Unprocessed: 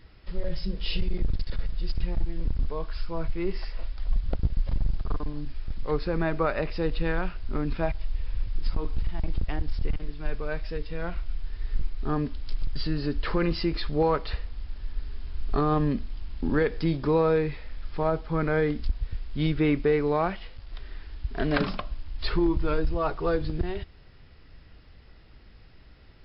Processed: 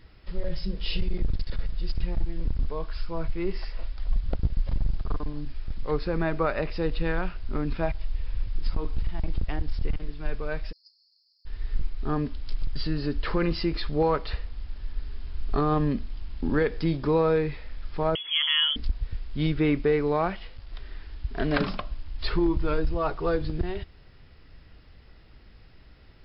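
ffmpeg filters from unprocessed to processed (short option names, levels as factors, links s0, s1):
-filter_complex "[0:a]asplit=3[s0][s1][s2];[s0]afade=t=out:st=10.71:d=0.02[s3];[s1]asuperpass=centerf=4900:order=20:qfactor=3.2,afade=t=in:st=10.71:d=0.02,afade=t=out:st=11.45:d=0.02[s4];[s2]afade=t=in:st=11.45:d=0.02[s5];[s3][s4][s5]amix=inputs=3:normalize=0,asettb=1/sr,asplit=3[s6][s7][s8];[s6]atrim=end=18.154[s9];[s7]atrim=start=18.15:end=18.76,asetpts=PTS-STARTPTS,afade=t=in:d=0.004:c=qsin,afade=t=out:st=0.606:d=0.004:c=qsin,lowpass=f=2900:t=q:w=0.5098,lowpass=f=2900:t=q:w=0.6013,lowpass=f=2900:t=q:w=0.9,lowpass=f=2900:t=q:w=2.563,afreqshift=-3400[s10];[s8]atrim=start=18.756[s11];[s9][s10]acrossfade=d=0.004:c1=hsin:c2=qsin[s12];[s12][s11]acrossfade=d=0.004:c1=qsin:c2=hsin"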